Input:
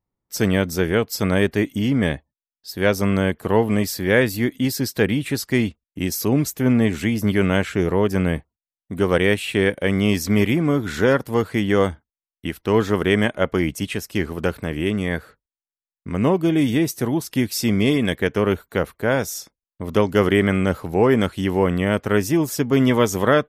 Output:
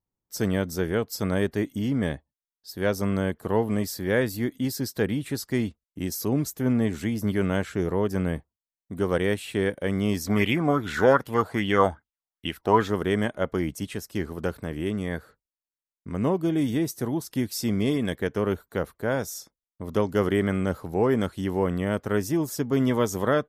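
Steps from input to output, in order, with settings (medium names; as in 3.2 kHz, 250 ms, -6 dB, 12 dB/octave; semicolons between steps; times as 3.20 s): peaking EQ 2.5 kHz -6.5 dB 0.83 oct; 10.28–12.88 s: sweeping bell 2.5 Hz 690–3000 Hz +16 dB; trim -6 dB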